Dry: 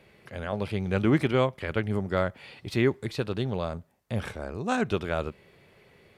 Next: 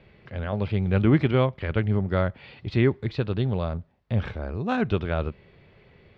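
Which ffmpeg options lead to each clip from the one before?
-af "lowpass=f=4.3k:w=0.5412,lowpass=f=4.3k:w=1.3066,lowshelf=f=140:g=11.5"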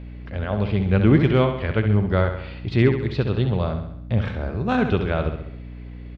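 -filter_complex "[0:a]aecho=1:1:67|134|201|268|335|402:0.398|0.211|0.112|0.0593|0.0314|0.0166,asplit=2[a][b];[b]aeval=exprs='clip(val(0),-1,0.237)':c=same,volume=-7dB[c];[a][c]amix=inputs=2:normalize=0,aeval=exprs='val(0)+0.0178*(sin(2*PI*60*n/s)+sin(2*PI*2*60*n/s)/2+sin(2*PI*3*60*n/s)/3+sin(2*PI*4*60*n/s)/4+sin(2*PI*5*60*n/s)/5)':c=same"

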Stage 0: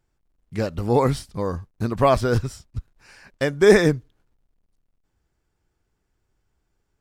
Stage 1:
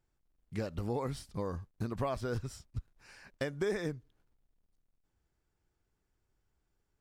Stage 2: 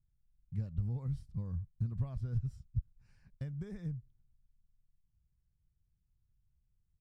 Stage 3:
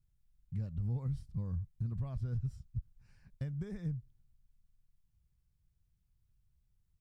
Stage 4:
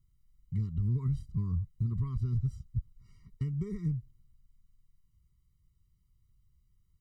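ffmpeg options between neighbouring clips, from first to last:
-af "acompressor=threshold=-25dB:ratio=5,volume=-7dB"
-af "firequalizer=gain_entry='entry(140,0);entry(310,-23);entry(590,-25)':delay=0.05:min_phase=1,volume=4.5dB"
-af "alimiter=level_in=7dB:limit=-24dB:level=0:latency=1:release=50,volume=-7dB,volume=2dB"
-af "afftfilt=real='re*eq(mod(floor(b*sr/1024/460),2),0)':imag='im*eq(mod(floor(b*sr/1024/460),2),0)':win_size=1024:overlap=0.75,volume=5.5dB"

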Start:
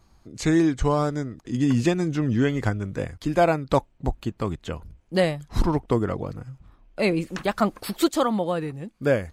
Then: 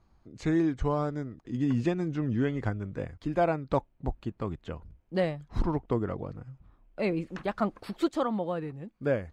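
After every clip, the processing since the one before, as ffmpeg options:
-af "aemphasis=mode=reproduction:type=75fm,volume=-7dB"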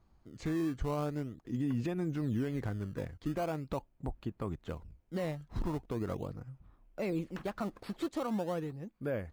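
-filter_complex "[0:a]asplit=2[a][b];[b]acrusher=samples=17:mix=1:aa=0.000001:lfo=1:lforange=27.2:lforate=0.41,volume=-10.5dB[c];[a][c]amix=inputs=2:normalize=0,alimiter=limit=-21dB:level=0:latency=1:release=70,volume=-4.5dB"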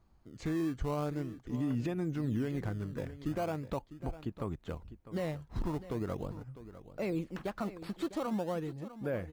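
-af "aecho=1:1:652:0.188"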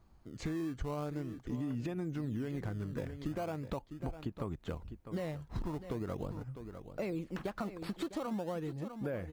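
-af "acompressor=threshold=-37dB:ratio=6,volume=3dB"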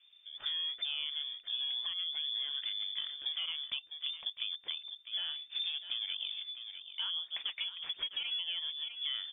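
-af "lowpass=f=3.1k:t=q:w=0.5098,lowpass=f=3.1k:t=q:w=0.6013,lowpass=f=3.1k:t=q:w=0.9,lowpass=f=3.1k:t=q:w=2.563,afreqshift=-3600"

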